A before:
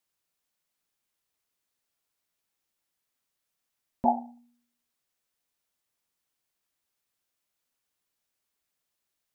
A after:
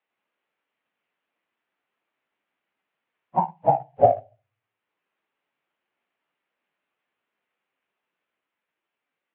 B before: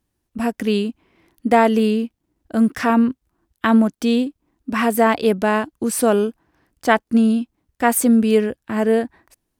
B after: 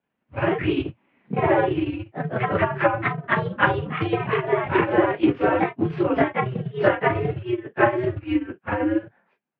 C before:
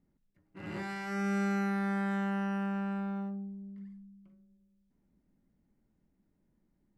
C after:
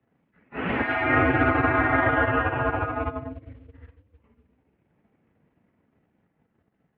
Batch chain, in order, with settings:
phase scrambler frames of 0.1 s; compressor 4:1, threshold -21 dBFS; modulation noise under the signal 32 dB; transient shaper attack +8 dB, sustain -8 dB; echoes that change speed 88 ms, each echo +2 st, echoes 2; mistuned SSB -130 Hz 340–3000 Hz; match loudness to -23 LUFS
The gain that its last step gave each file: +7.0, +1.5, +13.5 dB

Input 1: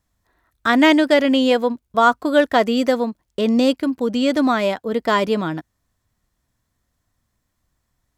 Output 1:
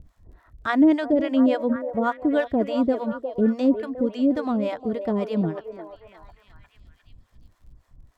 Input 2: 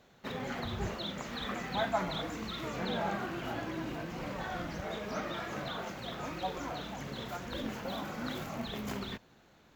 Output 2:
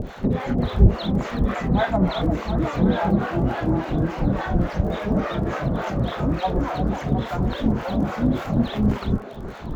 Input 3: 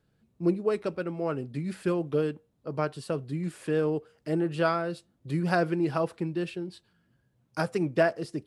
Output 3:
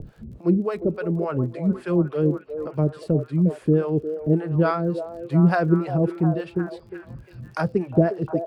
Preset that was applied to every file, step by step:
tilt -3.5 dB/oct; upward compressor, threshold -27 dBFS; harmonic tremolo 3.5 Hz, depth 100%, crossover 580 Hz; crackle 43/s -51 dBFS; delay with a stepping band-pass 0.355 s, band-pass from 510 Hz, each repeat 0.7 oct, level -6 dB; match loudness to -23 LUFS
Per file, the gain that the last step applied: -4.5, +13.5, +6.0 dB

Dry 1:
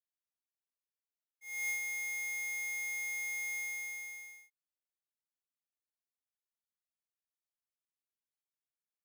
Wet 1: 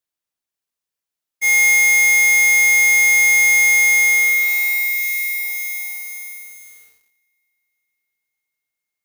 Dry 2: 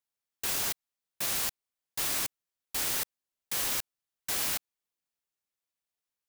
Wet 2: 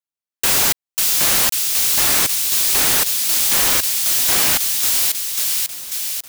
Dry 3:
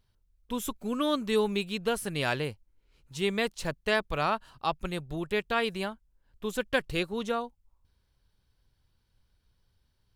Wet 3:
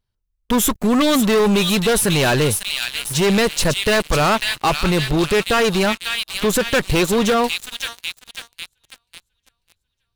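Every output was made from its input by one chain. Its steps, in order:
thin delay 0.544 s, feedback 52%, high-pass 3200 Hz, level -4 dB; sample leveller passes 5; limiter -15.5 dBFS; normalise peaks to -12 dBFS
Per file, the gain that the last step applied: +18.0, +5.0, +3.5 dB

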